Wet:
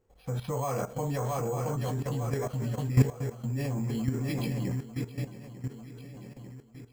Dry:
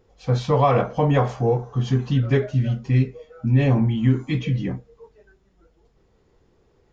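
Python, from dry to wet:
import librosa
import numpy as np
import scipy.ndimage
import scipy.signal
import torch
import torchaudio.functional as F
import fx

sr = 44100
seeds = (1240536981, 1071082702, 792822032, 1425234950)

y = fx.echo_swing(x, sr, ms=896, ratio=3, feedback_pct=48, wet_db=-9.0)
y = np.repeat(scipy.signal.resample_poly(y, 1, 6), 6)[:len(y)]
y = fx.level_steps(y, sr, step_db=14)
y = y * 10.0 ** (-2.5 / 20.0)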